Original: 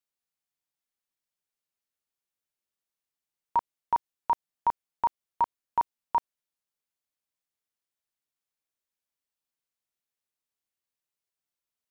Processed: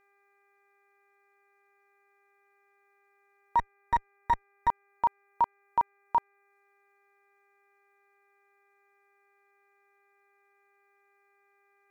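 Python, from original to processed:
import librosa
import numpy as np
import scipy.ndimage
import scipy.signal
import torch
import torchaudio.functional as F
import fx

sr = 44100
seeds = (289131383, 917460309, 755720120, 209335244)

y = fx.lower_of_two(x, sr, delay_ms=6.3, at=(3.56, 4.68), fade=0.02)
y = fx.dereverb_blind(y, sr, rt60_s=0.53)
y = fx.dmg_buzz(y, sr, base_hz=400.0, harmonics=6, level_db=-69.0, tilt_db=-1, odd_only=False)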